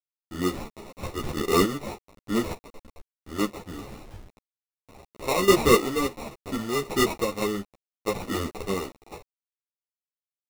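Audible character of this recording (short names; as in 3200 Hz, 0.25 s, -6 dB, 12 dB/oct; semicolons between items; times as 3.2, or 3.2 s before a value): aliases and images of a low sample rate 1600 Hz, jitter 0%; chopped level 0.73 Hz, depth 60%, duty 20%; a quantiser's noise floor 8-bit, dither none; a shimmering, thickened sound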